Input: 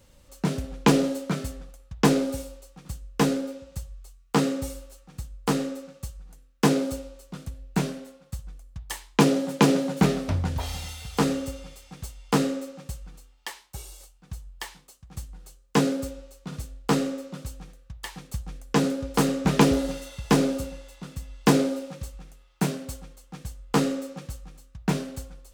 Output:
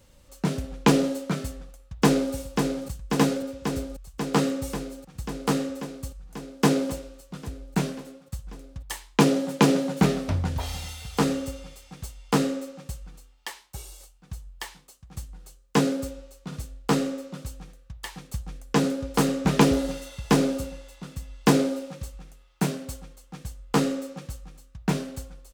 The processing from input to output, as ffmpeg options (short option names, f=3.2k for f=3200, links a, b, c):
-filter_complex "[0:a]asplit=2[a][b];[b]afade=t=in:st=1.48:d=0.01,afade=t=out:st=2.34:d=0.01,aecho=0:1:540|1080|1620|2160|2700|3240|3780|4320|4860|5400|5940|6480:0.530884|0.424708|0.339766|0.271813|0.21745|0.17396|0.139168|0.111335|0.0890676|0.0712541|0.0570033|0.0456026[c];[a][c]amix=inputs=2:normalize=0"